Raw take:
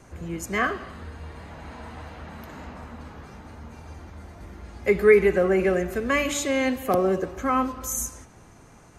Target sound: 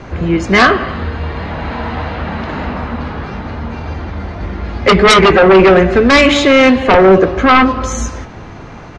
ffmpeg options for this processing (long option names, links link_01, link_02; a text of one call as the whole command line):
ffmpeg -i in.wav -filter_complex "[0:a]lowpass=frequency=4400:width=0.5412,lowpass=frequency=4400:width=1.3066,aeval=exprs='0.596*sin(PI/2*5.01*val(0)/0.596)':channel_layout=same,asplit=2[link_01][link_02];[link_02]adelay=21,volume=-14dB[link_03];[link_01][link_03]amix=inputs=2:normalize=0,volume=1.5dB" out.wav